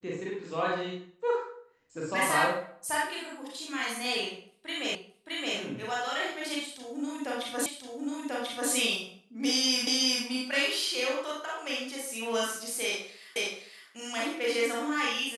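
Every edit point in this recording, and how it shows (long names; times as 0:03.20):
0:04.95: the same again, the last 0.62 s
0:07.66: the same again, the last 1.04 s
0:09.87: the same again, the last 0.37 s
0:13.36: the same again, the last 0.52 s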